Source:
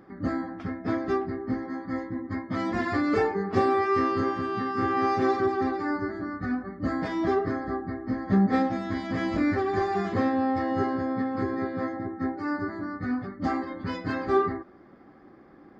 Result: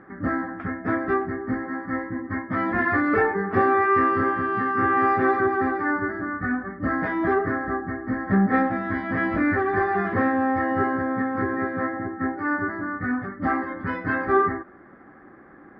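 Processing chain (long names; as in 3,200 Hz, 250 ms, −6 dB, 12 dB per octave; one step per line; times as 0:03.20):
in parallel at −10 dB: soft clipping −21.5 dBFS, distortion −14 dB
on the sum: low-pass with resonance 1,700 Hz, resonance Q 2.8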